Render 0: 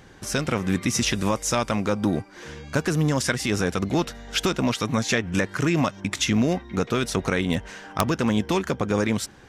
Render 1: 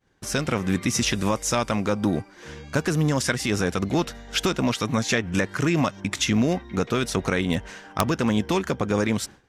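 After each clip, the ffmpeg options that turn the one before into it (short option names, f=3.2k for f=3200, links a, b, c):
-af "agate=range=-33dB:threshold=-37dB:ratio=3:detection=peak"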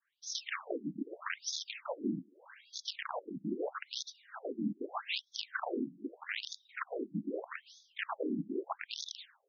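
-af "afftfilt=real='hypot(re,im)*cos(2*PI*random(0))':imag='hypot(re,im)*sin(2*PI*random(1))':win_size=512:overlap=0.75,aeval=exprs='(mod(11.2*val(0)+1,2)-1)/11.2':c=same,afftfilt=real='re*between(b*sr/1024,230*pow(4800/230,0.5+0.5*sin(2*PI*0.8*pts/sr))/1.41,230*pow(4800/230,0.5+0.5*sin(2*PI*0.8*pts/sr))*1.41)':imag='im*between(b*sr/1024,230*pow(4800/230,0.5+0.5*sin(2*PI*0.8*pts/sr))/1.41,230*pow(4800/230,0.5+0.5*sin(2*PI*0.8*pts/sr))*1.41)':win_size=1024:overlap=0.75,volume=-1dB"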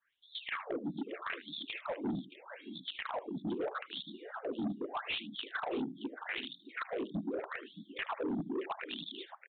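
-af "aecho=1:1:77|623:0.126|0.15,aresample=8000,asoftclip=type=tanh:threshold=-34.5dB,aresample=44100,volume=4dB"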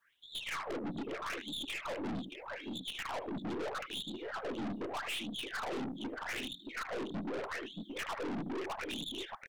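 -af "aeval=exprs='(tanh(178*val(0)+0.3)-tanh(0.3))/178':c=same,volume=8.5dB"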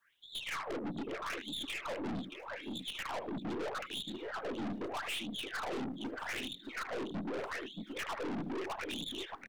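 -filter_complex "[0:a]acrossover=split=210|730|5200[a][b][c][d];[d]acrusher=bits=5:mode=log:mix=0:aa=0.000001[e];[a][b][c][e]amix=inputs=4:normalize=0,aecho=1:1:1097:0.0668"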